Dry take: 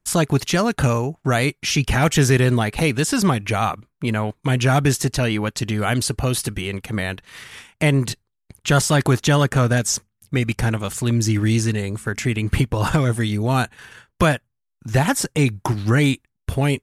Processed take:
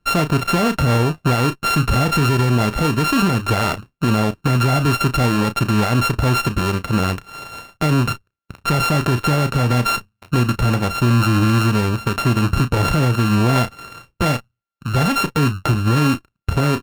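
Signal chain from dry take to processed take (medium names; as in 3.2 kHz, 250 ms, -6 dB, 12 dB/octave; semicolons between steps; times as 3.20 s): sorted samples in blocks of 32 samples; treble shelf 5 kHz -8.5 dB; doubling 33 ms -13.5 dB; peak limiter -16 dBFS, peak gain reduction 10.5 dB; sliding maximum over 5 samples; trim +7.5 dB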